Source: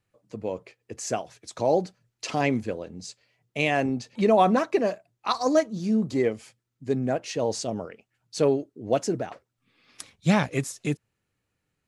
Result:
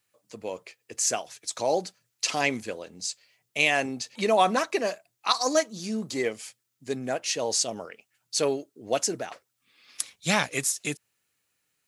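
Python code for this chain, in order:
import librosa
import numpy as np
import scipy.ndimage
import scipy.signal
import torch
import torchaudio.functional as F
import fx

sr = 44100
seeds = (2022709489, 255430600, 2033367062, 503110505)

y = fx.tilt_eq(x, sr, slope=3.5)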